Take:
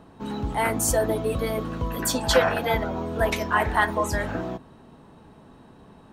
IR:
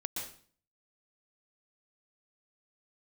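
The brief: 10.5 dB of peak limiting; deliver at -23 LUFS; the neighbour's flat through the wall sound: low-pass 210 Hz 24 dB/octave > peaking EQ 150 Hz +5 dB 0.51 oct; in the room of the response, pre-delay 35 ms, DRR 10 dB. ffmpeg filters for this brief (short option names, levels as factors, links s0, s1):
-filter_complex "[0:a]alimiter=limit=0.141:level=0:latency=1,asplit=2[s0][s1];[1:a]atrim=start_sample=2205,adelay=35[s2];[s1][s2]afir=irnorm=-1:irlink=0,volume=0.266[s3];[s0][s3]amix=inputs=2:normalize=0,lowpass=f=210:w=0.5412,lowpass=f=210:w=1.3066,equalizer=f=150:t=o:w=0.51:g=5,volume=3.35"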